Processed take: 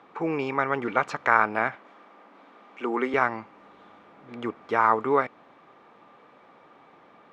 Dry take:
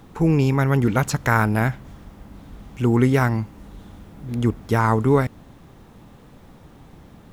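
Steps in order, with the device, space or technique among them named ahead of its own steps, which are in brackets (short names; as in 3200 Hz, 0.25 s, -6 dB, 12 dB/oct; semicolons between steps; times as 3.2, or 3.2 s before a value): tin-can telephone (BPF 500–2500 Hz; small resonant body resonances 1200/2300 Hz, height 9 dB); 1.75–3.14 HPF 210 Hz 24 dB/oct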